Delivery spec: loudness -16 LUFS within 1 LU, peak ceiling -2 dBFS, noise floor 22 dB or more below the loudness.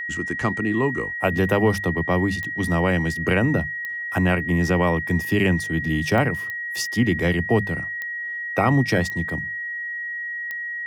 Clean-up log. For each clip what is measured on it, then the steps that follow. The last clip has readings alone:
clicks found 7; steady tone 1.9 kHz; tone level -27 dBFS; loudness -22.5 LUFS; peak level -6.5 dBFS; loudness target -16.0 LUFS
-> de-click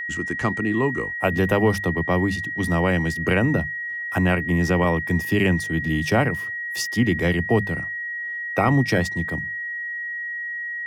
clicks found 0; steady tone 1.9 kHz; tone level -27 dBFS
-> band-stop 1.9 kHz, Q 30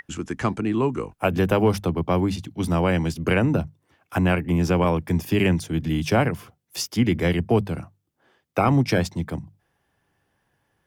steady tone not found; loudness -23.0 LUFS; peak level -7.0 dBFS; loudness target -16.0 LUFS
-> trim +7 dB; peak limiter -2 dBFS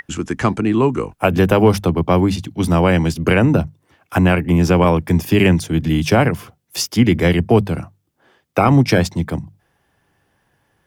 loudness -16.5 LUFS; peak level -2.0 dBFS; noise floor -66 dBFS

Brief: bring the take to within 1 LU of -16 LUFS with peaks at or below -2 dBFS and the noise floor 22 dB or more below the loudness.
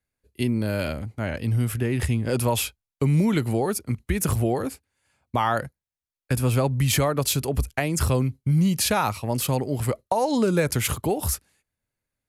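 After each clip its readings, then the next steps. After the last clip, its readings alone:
loudness -24.5 LUFS; peak level -9.5 dBFS; loudness target -16.0 LUFS
-> trim +8.5 dB; peak limiter -2 dBFS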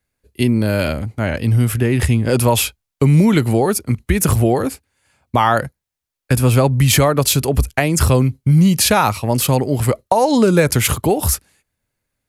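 loudness -16.0 LUFS; peak level -2.0 dBFS; noise floor -81 dBFS

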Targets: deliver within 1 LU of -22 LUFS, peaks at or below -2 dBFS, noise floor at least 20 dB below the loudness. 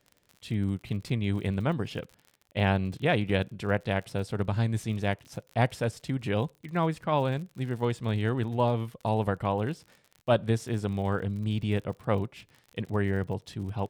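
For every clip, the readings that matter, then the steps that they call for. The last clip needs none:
tick rate 45 per s; loudness -30.0 LUFS; peak level -12.5 dBFS; loudness target -22.0 LUFS
-> de-click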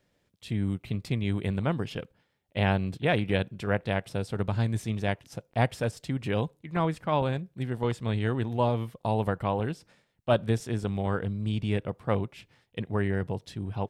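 tick rate 0 per s; loudness -30.0 LUFS; peak level -12.5 dBFS; loudness target -22.0 LUFS
-> trim +8 dB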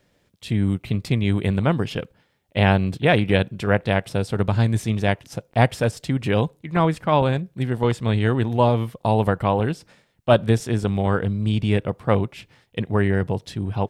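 loudness -22.0 LUFS; peak level -4.5 dBFS; noise floor -64 dBFS

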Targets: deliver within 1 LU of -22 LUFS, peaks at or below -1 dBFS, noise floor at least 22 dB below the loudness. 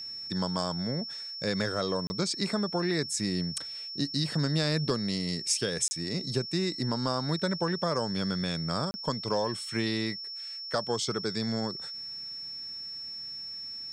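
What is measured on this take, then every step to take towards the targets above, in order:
dropouts 3; longest dropout 30 ms; steady tone 5.4 kHz; tone level -37 dBFS; loudness -31.0 LUFS; peak level -15.0 dBFS; loudness target -22.0 LUFS
-> interpolate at 2.07/5.88/8.91 s, 30 ms; band-stop 5.4 kHz, Q 30; trim +9 dB

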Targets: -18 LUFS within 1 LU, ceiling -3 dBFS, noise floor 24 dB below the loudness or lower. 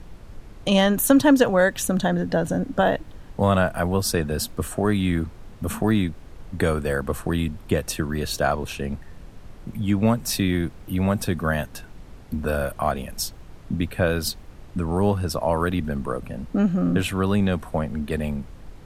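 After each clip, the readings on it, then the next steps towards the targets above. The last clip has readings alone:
noise floor -44 dBFS; noise floor target -48 dBFS; loudness -23.5 LUFS; peak level -3.0 dBFS; loudness target -18.0 LUFS
-> noise print and reduce 6 dB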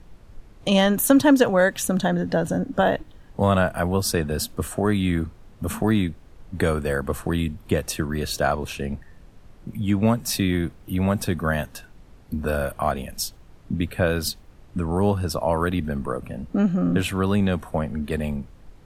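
noise floor -49 dBFS; loudness -23.5 LUFS; peak level -3.5 dBFS; loudness target -18.0 LUFS
-> trim +5.5 dB; peak limiter -3 dBFS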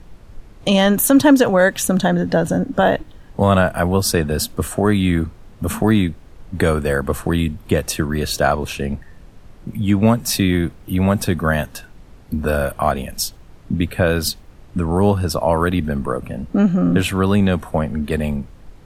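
loudness -18.5 LUFS; peak level -3.0 dBFS; noise floor -44 dBFS

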